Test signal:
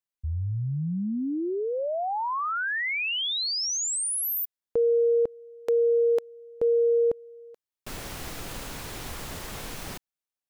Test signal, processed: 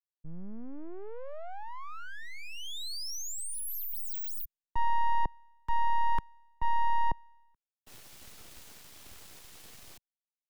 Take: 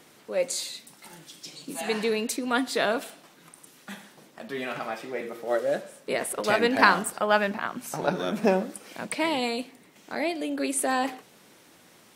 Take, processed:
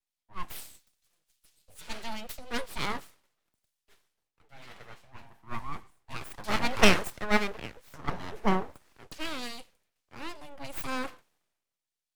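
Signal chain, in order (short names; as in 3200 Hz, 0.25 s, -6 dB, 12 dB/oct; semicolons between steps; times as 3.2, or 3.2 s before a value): full-wave rectifier; three-band expander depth 100%; gain -7.5 dB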